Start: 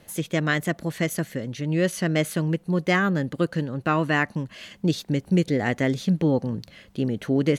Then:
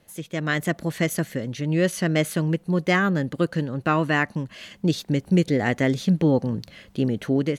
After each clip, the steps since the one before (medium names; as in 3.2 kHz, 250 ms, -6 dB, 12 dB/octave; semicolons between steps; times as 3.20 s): level rider gain up to 11 dB; trim -7 dB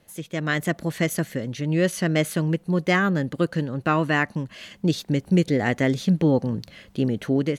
no audible change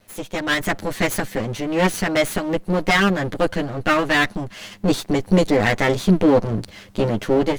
comb filter that takes the minimum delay 9.8 ms; trim +6 dB